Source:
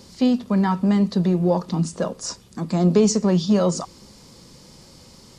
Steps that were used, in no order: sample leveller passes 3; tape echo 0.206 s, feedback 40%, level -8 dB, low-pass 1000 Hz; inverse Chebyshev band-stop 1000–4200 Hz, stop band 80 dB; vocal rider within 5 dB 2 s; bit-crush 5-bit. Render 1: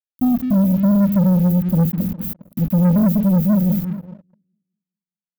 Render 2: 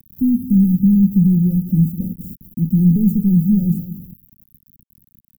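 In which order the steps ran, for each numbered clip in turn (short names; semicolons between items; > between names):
vocal rider > bit-crush > inverse Chebyshev band-stop > tape echo > sample leveller; sample leveller > tape echo > bit-crush > inverse Chebyshev band-stop > vocal rider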